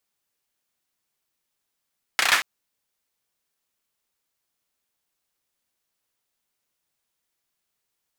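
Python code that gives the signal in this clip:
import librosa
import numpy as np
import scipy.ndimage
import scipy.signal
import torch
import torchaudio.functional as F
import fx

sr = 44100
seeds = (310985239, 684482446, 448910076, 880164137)

y = fx.drum_clap(sr, seeds[0], length_s=0.23, bursts=5, spacing_ms=32, hz=1700.0, decay_s=0.39)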